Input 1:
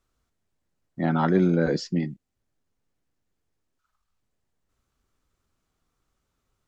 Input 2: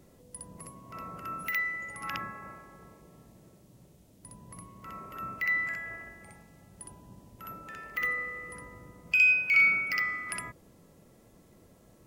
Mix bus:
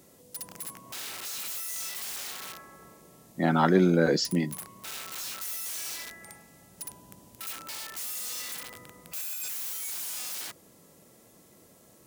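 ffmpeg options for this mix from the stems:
-filter_complex "[0:a]aeval=exprs='val(0)+0.000708*(sin(2*PI*60*n/s)+sin(2*PI*2*60*n/s)/2+sin(2*PI*3*60*n/s)/3+sin(2*PI*4*60*n/s)/4+sin(2*PI*5*60*n/s)/5)':c=same,adelay=2400,volume=1.19[s0];[1:a]acompressor=threshold=0.0178:ratio=2.5,aeval=exprs='(mod(100*val(0)+1,2)-1)/100':c=same,volume=1.26[s1];[s0][s1]amix=inputs=2:normalize=0,highpass=f=210:p=1,highshelf=f=4100:g=9"

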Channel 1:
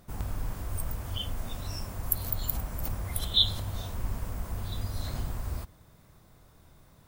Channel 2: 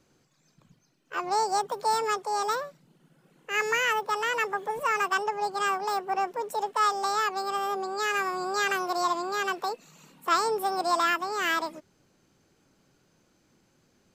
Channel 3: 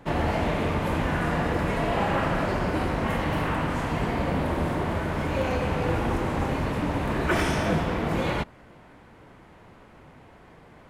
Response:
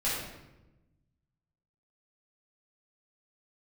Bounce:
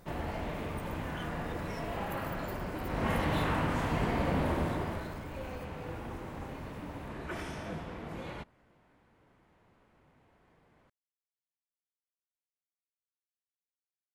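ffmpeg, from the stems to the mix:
-filter_complex "[0:a]asoftclip=type=tanh:threshold=0.0282,volume=0.794[s0];[2:a]volume=0.631,afade=t=in:st=2.84:d=0.23:silence=0.398107,afade=t=out:st=4.5:d=0.69:silence=0.266073[s1];[s0]acompressor=threshold=0.00447:ratio=6,volume=1[s2];[s1][s2]amix=inputs=2:normalize=0"

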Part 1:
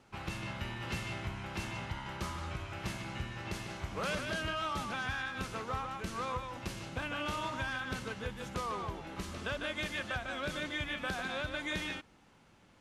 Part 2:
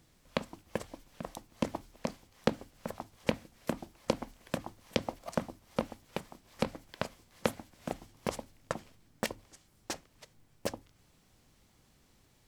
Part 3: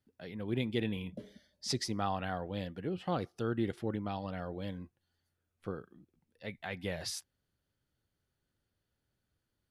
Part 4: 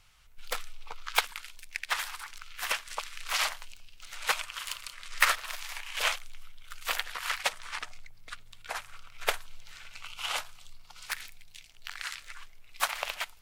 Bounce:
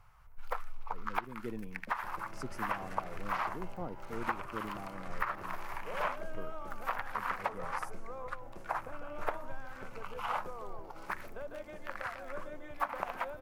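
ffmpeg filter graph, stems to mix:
-filter_complex "[0:a]equalizer=f=580:w=0.67:g=14.5,adelay=1900,volume=0.15[s0];[2:a]highpass=140,adelay=700,volume=0.501[s1];[3:a]acrossover=split=4100[s2][s3];[s3]acompressor=threshold=0.00562:ratio=4:attack=1:release=60[s4];[s2][s4]amix=inputs=2:normalize=0,equalizer=f=125:t=o:w=1:g=5,equalizer=f=250:t=o:w=1:g=-10,equalizer=f=1000:t=o:w=1:g=8,equalizer=f=4000:t=o:w=1:g=4,equalizer=f=8000:t=o:w=1:g=-9,equalizer=f=16000:t=o:w=1:g=-6,volume=1.41[s5];[s1][s5]amix=inputs=2:normalize=0,equalizer=f=3800:t=o:w=2.2:g=-9.5,acompressor=threshold=0.0398:ratio=16,volume=1[s6];[s0][s6]amix=inputs=2:normalize=0,equalizer=f=3600:w=1.2:g=-12"

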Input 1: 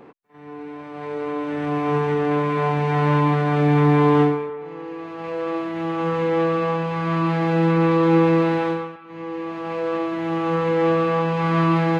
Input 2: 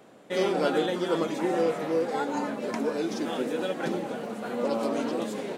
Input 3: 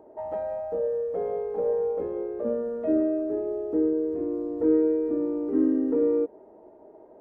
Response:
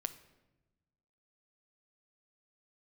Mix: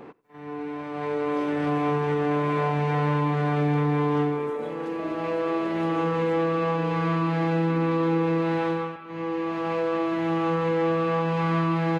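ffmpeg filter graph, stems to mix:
-filter_complex "[0:a]volume=1.06,asplit=3[s0][s1][s2];[s1]volume=0.2[s3];[s2]volume=0.0631[s4];[1:a]adelay=1000,volume=0.188[s5];[2:a]adelay=2150,volume=0.282[s6];[3:a]atrim=start_sample=2205[s7];[s3][s7]afir=irnorm=-1:irlink=0[s8];[s4]aecho=0:1:90:1[s9];[s0][s5][s6][s8][s9]amix=inputs=5:normalize=0,acompressor=threshold=0.0794:ratio=4"

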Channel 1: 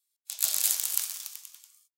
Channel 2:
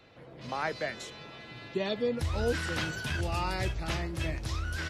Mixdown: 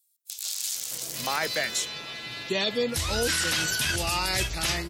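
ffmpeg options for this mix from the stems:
-filter_complex "[0:a]acrossover=split=6600[s0][s1];[s1]acompressor=threshold=0.00794:ratio=4:attack=1:release=60[s2];[s0][s2]amix=inputs=2:normalize=0,volume=0.299[s3];[1:a]equalizer=f=86:t=o:w=0.9:g=-4,adelay=750,volume=1.26[s4];[s3][s4]amix=inputs=2:normalize=0,crystalizer=i=7:c=0,alimiter=limit=0.15:level=0:latency=1:release=13"

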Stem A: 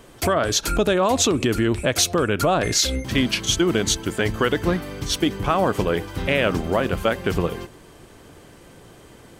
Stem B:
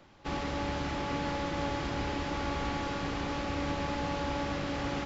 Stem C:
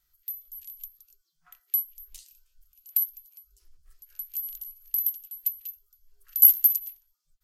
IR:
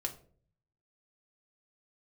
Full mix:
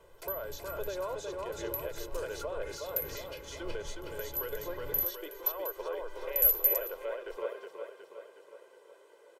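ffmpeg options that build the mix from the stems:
-filter_complex "[0:a]highpass=f=440:w=0.5412,highpass=f=440:w=1.3066,volume=0.188,asplit=2[s0][s1];[s1]volume=0.282[s2];[1:a]volume=0.178[s3];[2:a]volume=0.631,asplit=2[s4][s5];[s5]volume=0.501[s6];[s0][s3]amix=inputs=2:normalize=0,alimiter=level_in=3.16:limit=0.0631:level=0:latency=1:release=414,volume=0.316,volume=1[s7];[3:a]atrim=start_sample=2205[s8];[s6][s8]afir=irnorm=-1:irlink=0[s9];[s2]aecho=0:1:366|732|1098|1464|1830|2196|2562|2928:1|0.54|0.292|0.157|0.085|0.0459|0.0248|0.0134[s10];[s4][s7][s9][s10]amix=inputs=4:normalize=0,tiltshelf=f=1200:g=6,aecho=1:1:2:0.73"

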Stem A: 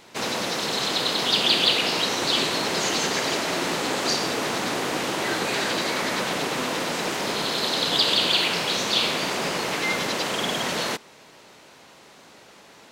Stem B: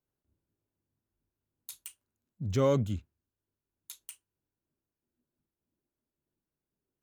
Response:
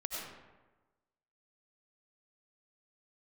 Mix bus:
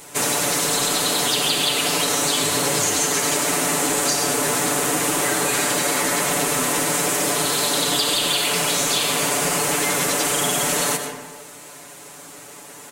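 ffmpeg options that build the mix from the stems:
-filter_complex "[0:a]highshelf=f=6300:t=q:w=1.5:g=12,aecho=1:1:6.9:0.85,volume=1.12,asplit=2[s0][s1];[s1]volume=0.596[s2];[1:a]volume=0.794[s3];[2:a]atrim=start_sample=2205[s4];[s2][s4]afir=irnorm=-1:irlink=0[s5];[s0][s3][s5]amix=inputs=3:normalize=0,acompressor=threshold=0.141:ratio=6"

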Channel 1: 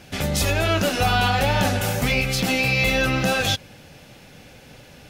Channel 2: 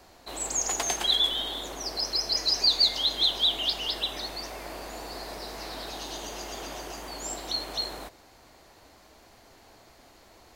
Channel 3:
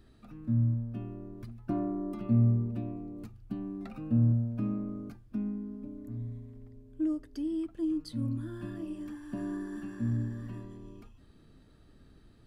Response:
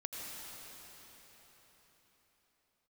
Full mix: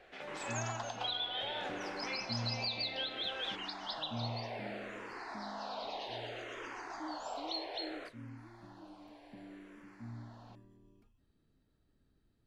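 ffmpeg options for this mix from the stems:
-filter_complex "[0:a]volume=0.168[s0];[1:a]asplit=2[s1][s2];[s2]afreqshift=-0.63[s3];[s1][s3]amix=inputs=2:normalize=1,volume=1.19[s4];[2:a]volume=0.158[s5];[s0][s4]amix=inputs=2:normalize=0,highpass=490,lowpass=2600,alimiter=level_in=1.58:limit=0.0631:level=0:latency=1:release=301,volume=0.631,volume=1[s6];[s5][s6]amix=inputs=2:normalize=0,bandreject=f=1200:w=22"

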